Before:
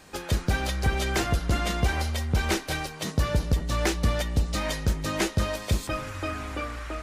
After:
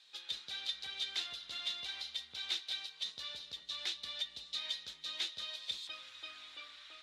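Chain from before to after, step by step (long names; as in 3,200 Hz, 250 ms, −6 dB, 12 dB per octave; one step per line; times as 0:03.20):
resonant band-pass 3,700 Hz, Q 7.1
level +3.5 dB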